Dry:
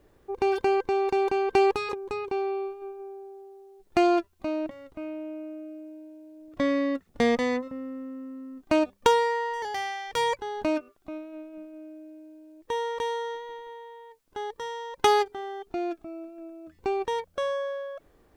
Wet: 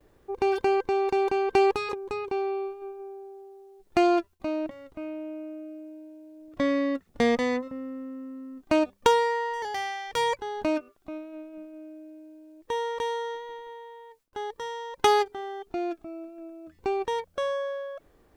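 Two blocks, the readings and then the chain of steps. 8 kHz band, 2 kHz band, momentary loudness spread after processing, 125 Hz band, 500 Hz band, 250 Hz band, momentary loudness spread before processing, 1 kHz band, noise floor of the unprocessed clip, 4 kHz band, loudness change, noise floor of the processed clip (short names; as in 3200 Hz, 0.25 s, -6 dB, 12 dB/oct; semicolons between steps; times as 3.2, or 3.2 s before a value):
0.0 dB, 0.0 dB, 20 LU, 0.0 dB, 0.0 dB, 0.0 dB, 20 LU, 0.0 dB, -63 dBFS, 0.0 dB, 0.0 dB, -63 dBFS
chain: gate with hold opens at -54 dBFS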